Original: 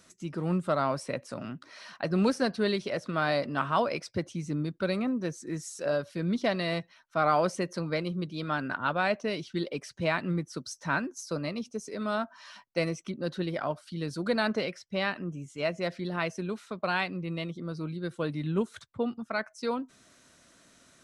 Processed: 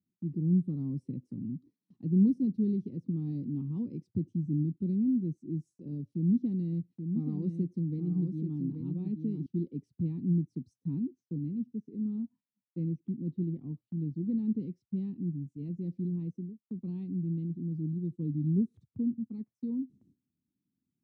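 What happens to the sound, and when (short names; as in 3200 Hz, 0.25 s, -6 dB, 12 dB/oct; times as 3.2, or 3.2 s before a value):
6.15–9.46 echo 0.83 s -6.5 dB
11.05–14.61 Chebyshev low-pass 2800 Hz
16.17–16.7 studio fade out
whole clip: inverse Chebyshev low-pass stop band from 570 Hz, stop band 40 dB; gate with hold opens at -56 dBFS; HPF 87 Hz; gain +4 dB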